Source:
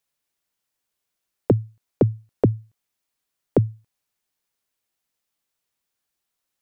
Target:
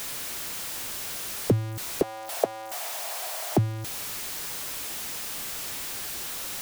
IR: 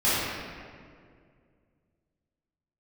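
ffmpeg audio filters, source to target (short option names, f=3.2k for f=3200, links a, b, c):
-filter_complex "[0:a]aeval=exprs='val(0)+0.5*0.075*sgn(val(0))':c=same,asettb=1/sr,asplit=3[a][b][c];[a]atrim=end=2.024[d];[b]atrim=start=2.02:end=3.57,asetpts=PTS-STARTPTS,afade=t=in:d=0.004:c=qsin,afade=t=out:st=1.546:d=0.004:c=qsin,highpass=f=670:t=q:w=4.9[e];[c]atrim=start=3.566[f];[d][e]acrossfade=d=0.004:c1=hsin:c2=qsin[g];[g][f]acrossfade=d=0.004:c1=qsin:c2=hsin,volume=-5.5dB"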